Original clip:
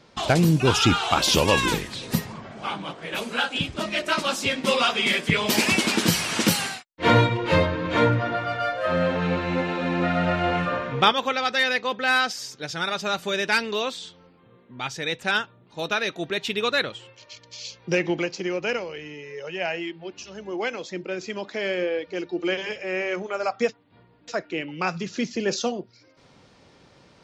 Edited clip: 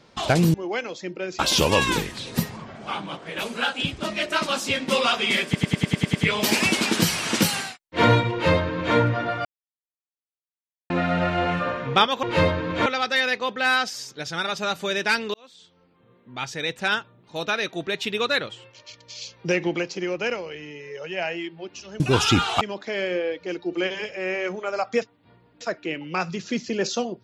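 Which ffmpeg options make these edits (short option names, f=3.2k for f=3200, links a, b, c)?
-filter_complex "[0:a]asplit=17[a][b][c][d][e][f][g][h][i][j][k][l][m][n][o][p][q];[a]atrim=end=0.542[r];[b]atrim=start=20.428:end=21.282[s];[c]atrim=start=1.148:end=5.312[t];[d]atrim=start=5.208:end=5.312[u];[e]atrim=start=5.208:end=5.312[v];[f]atrim=start=5.208:end=5.312[w];[g]atrim=start=5.208:end=5.312[x];[h]atrim=start=5.208:end=5.312[y];[i]atrim=start=5.208:end=5.312[z];[j]atrim=start=5.208:end=8.51,asetpts=PTS-STARTPTS,afade=t=out:st=3.298:d=0.004:c=hsin[aa];[k]atrim=start=8.51:end=9.96,asetpts=PTS-STARTPTS,volume=0[ab];[l]atrim=start=9.96:end=11.292,asetpts=PTS-STARTPTS,afade=t=in:d=0.004:c=hsin[ac];[m]atrim=start=7.378:end=8.012[ad];[n]atrim=start=11.288:end=13.77,asetpts=PTS-STARTPTS,afade=t=out:st=2.478:d=0.004:c=hsin[ae];[o]atrim=start=13.77:end=20.432,asetpts=PTS-STARTPTS,afade=t=in:d=1.08[af];[p]atrim=start=0.538:end=1.152[ag];[q]atrim=start=21.278[ah];[r][s]acrossfade=d=0.004:c1=hsin:c2=hsin[ai];[ai][t]acrossfade=d=0.004:c1=hsin:c2=hsin[aj];[aj][u]acrossfade=d=0.004:c1=hsin:c2=hsin[ak];[ak][v]acrossfade=d=0.004:c1=hsin:c2=hsin[al];[al][w]acrossfade=d=0.004:c1=hsin:c2=hsin[am];[am][x]acrossfade=d=0.004:c1=hsin:c2=hsin[an];[an][y]acrossfade=d=0.004:c1=hsin:c2=hsin[ao];[ao][z]acrossfade=d=0.004:c1=hsin:c2=hsin[ap];[aa][ab][ac]concat=n=3:v=0:a=1[aq];[ap][aq]acrossfade=d=0.004:c1=hsin:c2=hsin[ar];[ar][ad]acrossfade=d=0.004:c1=hsin:c2=hsin[as];[ae][af]concat=n=2:v=0:a=1[at];[as][at]acrossfade=d=0.004:c1=hsin:c2=hsin[au];[au][ag]acrossfade=d=0.004:c1=hsin:c2=hsin[av];[av][ah]acrossfade=d=0.004:c1=hsin:c2=hsin"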